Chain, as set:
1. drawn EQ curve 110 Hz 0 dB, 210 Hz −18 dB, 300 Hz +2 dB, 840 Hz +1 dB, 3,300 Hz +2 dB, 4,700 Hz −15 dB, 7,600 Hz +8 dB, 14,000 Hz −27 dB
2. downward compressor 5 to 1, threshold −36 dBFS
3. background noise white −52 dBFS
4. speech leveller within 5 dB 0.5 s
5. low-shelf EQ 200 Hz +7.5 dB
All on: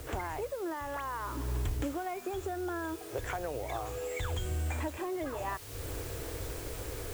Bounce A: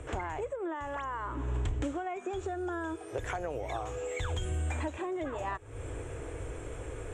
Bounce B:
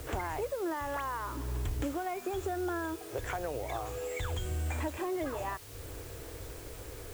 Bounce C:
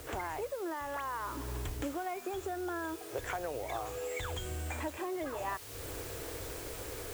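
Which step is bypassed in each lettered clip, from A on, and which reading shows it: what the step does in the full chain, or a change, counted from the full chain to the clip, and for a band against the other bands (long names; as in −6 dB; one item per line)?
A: 3, 8 kHz band −5.0 dB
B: 4, 8 kHz band −1.5 dB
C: 5, 125 Hz band −6.0 dB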